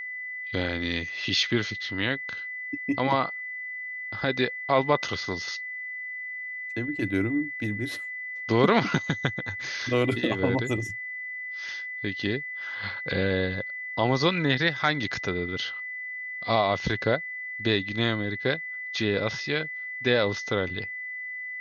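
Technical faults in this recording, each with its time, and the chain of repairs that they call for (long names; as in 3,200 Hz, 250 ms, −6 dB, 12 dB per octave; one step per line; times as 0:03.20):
whistle 2,000 Hz −33 dBFS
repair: notch filter 2,000 Hz, Q 30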